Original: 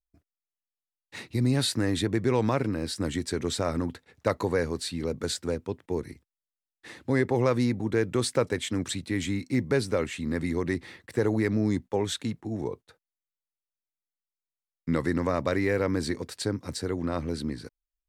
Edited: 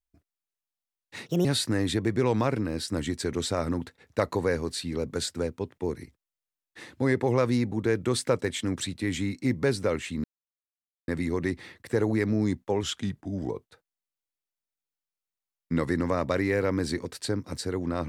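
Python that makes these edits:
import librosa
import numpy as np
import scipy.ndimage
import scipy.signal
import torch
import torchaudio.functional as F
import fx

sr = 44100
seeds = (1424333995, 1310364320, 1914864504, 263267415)

y = fx.edit(x, sr, fx.speed_span(start_s=1.26, length_s=0.27, speed=1.42),
    fx.insert_silence(at_s=10.32, length_s=0.84),
    fx.speed_span(start_s=12.07, length_s=0.59, speed=0.89), tone=tone)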